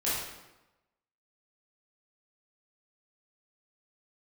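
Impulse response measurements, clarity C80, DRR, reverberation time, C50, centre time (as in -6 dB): 2.5 dB, -10.0 dB, 1.0 s, -1.0 dB, 78 ms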